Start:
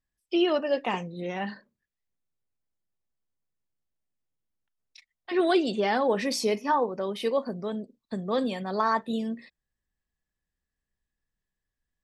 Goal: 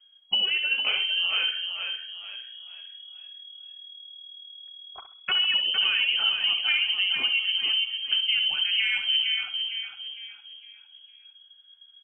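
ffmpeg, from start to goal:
-filter_complex "[0:a]acontrast=79,aemphasis=mode=reproduction:type=bsi,acompressor=threshold=-32dB:ratio=6,asplit=2[a][b];[b]adelay=66,lowpass=f=2k:p=1,volume=-8dB,asplit=2[c][d];[d]adelay=66,lowpass=f=2k:p=1,volume=0.39,asplit=2[e][f];[f]adelay=66,lowpass=f=2k:p=1,volume=0.39,asplit=2[g][h];[h]adelay=66,lowpass=f=2k:p=1,volume=0.39[i];[c][e][g][i]amix=inputs=4:normalize=0[j];[a][j]amix=inputs=2:normalize=0,lowpass=f=2.8k:t=q:w=0.5098,lowpass=f=2.8k:t=q:w=0.6013,lowpass=f=2.8k:t=q:w=0.9,lowpass=f=2.8k:t=q:w=2.563,afreqshift=-3300,asplit=2[k][l];[l]asplit=5[m][n][o][p][q];[m]adelay=457,afreqshift=38,volume=-6dB[r];[n]adelay=914,afreqshift=76,volume=-14dB[s];[o]adelay=1371,afreqshift=114,volume=-21.9dB[t];[p]adelay=1828,afreqshift=152,volume=-29.9dB[u];[q]adelay=2285,afreqshift=190,volume=-37.8dB[v];[r][s][t][u][v]amix=inputs=5:normalize=0[w];[k][w]amix=inputs=2:normalize=0,volume=7dB"

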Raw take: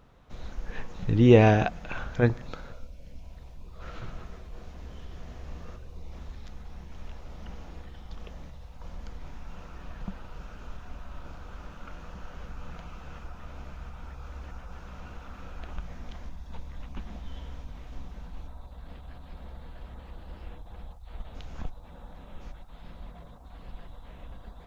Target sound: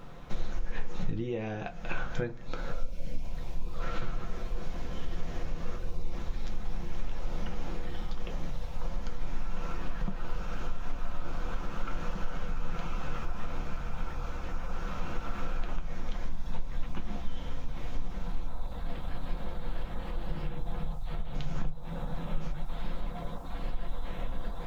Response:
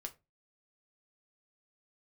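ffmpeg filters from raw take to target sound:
-filter_complex "[0:a]asettb=1/sr,asplit=3[a][b][c];[a]atrim=end=20.274[d];[b]atrim=start=20.27:end=22.67,asetpts=PTS-STARTPTS,afade=t=in:d=0.004:c=qsin,afade=t=out:st=2.396:d=0.004:c=qsin,equalizer=f=150:w=5.1:g=13.5[e];[c]atrim=start=22.666[f];[d][e]acrossfade=d=0.004:c1=hsin:c2=qsin[g];[g][f]acrossfade=d=0.004:c1=qsin:c2=hsin,acompressor=threshold=-40dB:ratio=20[h];[1:a]atrim=start_sample=2205,asetrate=48510,aresample=44100[i];[h][i]afir=irnorm=-1:irlink=0,volume=14.5dB"

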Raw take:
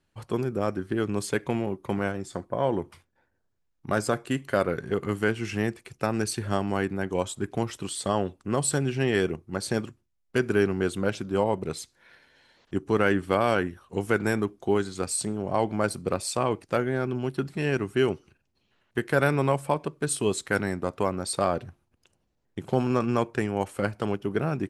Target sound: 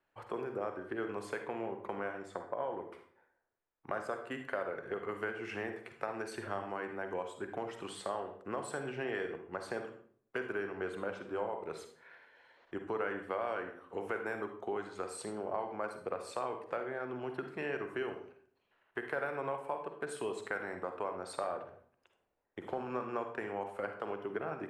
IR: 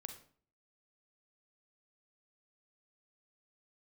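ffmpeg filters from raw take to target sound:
-filter_complex "[0:a]acrossover=split=400 2400:gain=0.126 1 0.141[a][b][c];[a][b][c]amix=inputs=3:normalize=0,acompressor=threshold=-37dB:ratio=3[d];[1:a]atrim=start_sample=2205,asetrate=38808,aresample=44100[e];[d][e]afir=irnorm=-1:irlink=0,volume=4.5dB"

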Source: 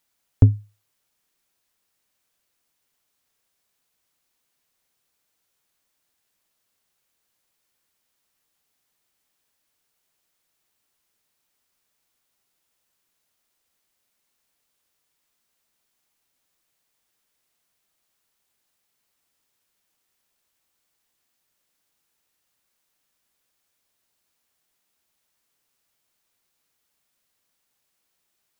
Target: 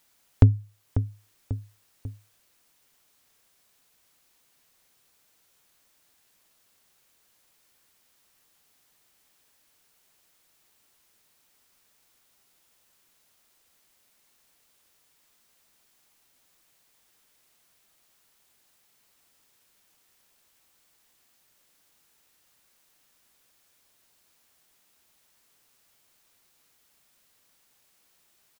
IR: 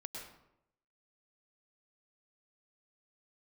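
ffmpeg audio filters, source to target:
-af "aecho=1:1:543|1086|1629:0.168|0.0655|0.0255,acompressor=threshold=-38dB:ratio=1.5,volume=8.5dB"

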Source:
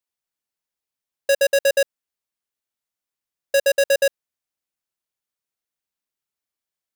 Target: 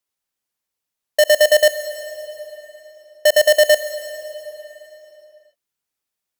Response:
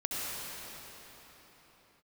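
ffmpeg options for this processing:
-filter_complex "[0:a]asplit=2[a][b];[b]bass=f=250:g=4,treble=f=4k:g=6[c];[1:a]atrim=start_sample=2205,lowshelf=f=160:g=-7.5[d];[c][d]afir=irnorm=-1:irlink=0,volume=-18dB[e];[a][e]amix=inputs=2:normalize=0,asetrate=48000,aresample=44100,volume=4dB"

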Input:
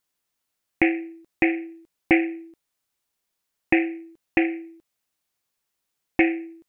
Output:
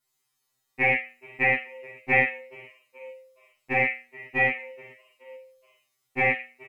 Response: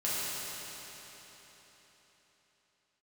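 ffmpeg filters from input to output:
-filter_complex "[0:a]asplit=4[a][b][c][d];[b]adelay=425,afreqshift=96,volume=-22.5dB[e];[c]adelay=850,afreqshift=192,volume=-30.7dB[f];[d]adelay=1275,afreqshift=288,volume=-38.9dB[g];[a][e][f][g]amix=inputs=4:normalize=0[h];[1:a]atrim=start_sample=2205,atrim=end_sample=4410,asetrate=33957,aresample=44100[i];[h][i]afir=irnorm=-1:irlink=0,afftfilt=real='re*2.45*eq(mod(b,6),0)':imag='im*2.45*eq(mod(b,6),0)':win_size=2048:overlap=0.75"

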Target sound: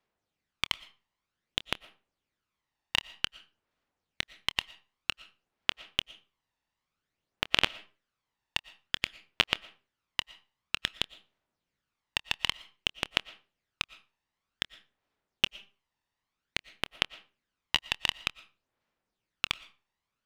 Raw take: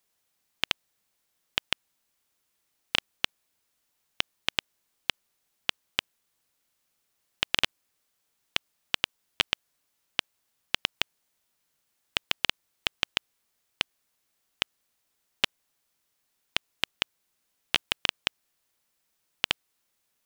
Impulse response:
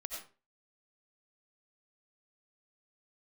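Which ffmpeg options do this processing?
-filter_complex "[0:a]aphaser=in_gain=1:out_gain=1:delay=1.1:decay=0.5:speed=0.53:type=sinusoidal,adynamicsmooth=sensitivity=5:basefreq=3.6k,asplit=2[a][b];[1:a]atrim=start_sample=2205,adelay=26[c];[b][c]afir=irnorm=-1:irlink=0,volume=-16dB[d];[a][d]amix=inputs=2:normalize=0,volume=-3.5dB"

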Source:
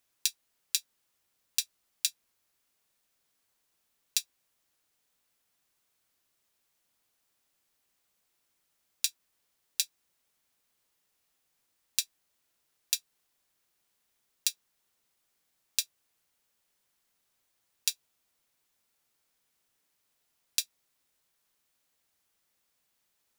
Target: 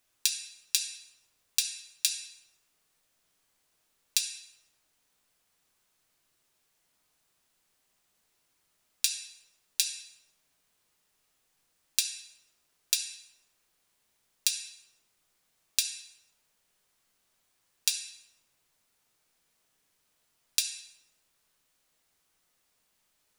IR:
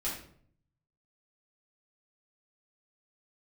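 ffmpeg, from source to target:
-filter_complex "[0:a]asplit=2[a][b];[1:a]atrim=start_sample=2205,asetrate=22050,aresample=44100[c];[b][c]afir=irnorm=-1:irlink=0,volume=-9dB[d];[a][d]amix=inputs=2:normalize=0"

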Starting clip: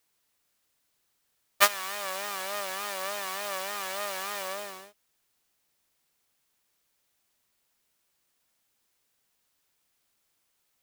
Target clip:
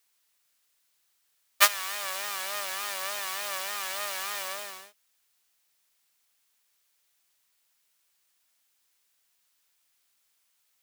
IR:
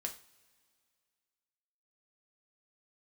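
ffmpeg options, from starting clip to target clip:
-af "tiltshelf=f=740:g=-6.5,volume=-3.5dB"

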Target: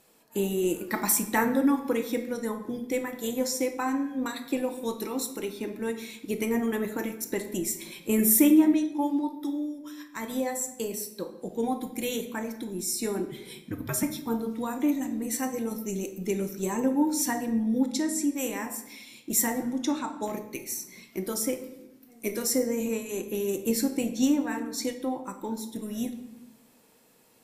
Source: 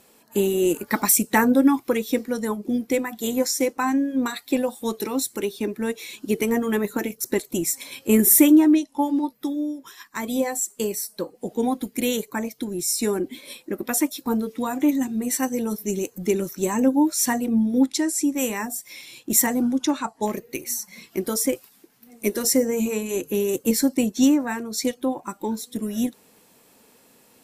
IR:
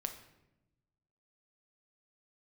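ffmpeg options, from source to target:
-filter_complex "[0:a]asettb=1/sr,asplit=3[a][b][c];[a]atrim=end=13.284[d];[b]atrim=start=13.28:end=14.03,asetpts=PTS-STARTPTS,afade=t=in:d=0.004:c=qsin,afade=t=out:st=0.746:d=0.004:c=qsin,afreqshift=-95[e];[c]atrim=start=14.026[f];[d][e]acrossfade=d=0.004:c1=hsin:c2=qsin[g];[g][f]acrossfade=d=0.004:c1=qsin:c2=hsin[h];[1:a]atrim=start_sample=2205[i];[h][i]afir=irnorm=-1:irlink=0,volume=-5dB"

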